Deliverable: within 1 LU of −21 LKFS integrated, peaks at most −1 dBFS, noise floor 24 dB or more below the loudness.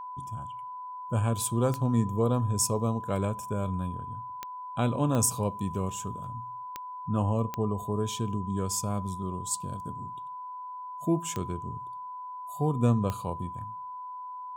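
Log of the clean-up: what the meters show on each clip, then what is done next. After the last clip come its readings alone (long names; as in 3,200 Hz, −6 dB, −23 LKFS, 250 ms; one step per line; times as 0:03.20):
number of clicks 7; interfering tone 1,000 Hz; level of the tone −37 dBFS; integrated loudness −31.0 LKFS; sample peak −12.5 dBFS; target loudness −21.0 LKFS
→ click removal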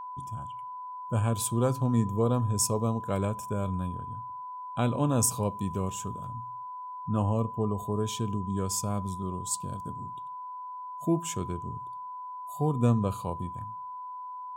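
number of clicks 0; interfering tone 1,000 Hz; level of the tone −37 dBFS
→ notch filter 1,000 Hz, Q 30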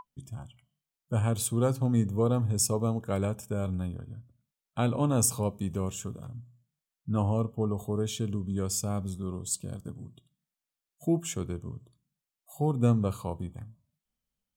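interfering tone none found; integrated loudness −30.0 LKFS; sample peak −13.0 dBFS; target loudness −21.0 LKFS
→ level +9 dB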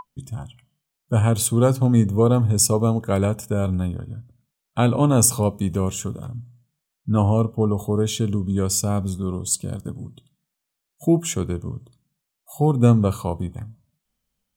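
integrated loudness −21.0 LKFS; sample peak −4.0 dBFS; background noise floor −81 dBFS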